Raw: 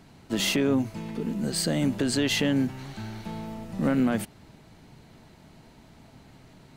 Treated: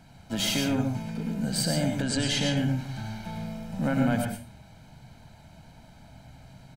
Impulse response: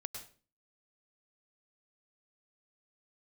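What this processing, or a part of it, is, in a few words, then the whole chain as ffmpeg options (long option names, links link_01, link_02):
microphone above a desk: -filter_complex "[0:a]aecho=1:1:1.3:0.66[link_01];[1:a]atrim=start_sample=2205[link_02];[link_01][link_02]afir=irnorm=-1:irlink=0,asettb=1/sr,asplit=3[link_03][link_04][link_05];[link_03]atrim=end=2.024[link_06];[link_04]atrim=start=2.02:end=2.57,asetpts=PTS-STARTPTS,afade=type=in:duration=0.004:curve=qsin,afade=type=out:start_time=0.546:duration=0.004:curve=qsin,lowpass=frequency=10000:width=0.5412,lowpass=frequency=10000:width=1.3066[link_07];[link_05]atrim=start=2.566[link_08];[link_06][link_07]acrossfade=duration=0.004:curve1=hsin:curve2=qsin[link_09];[link_09][link_08]acrossfade=duration=0.004:curve1=qsin:curve2=hsin,volume=1dB"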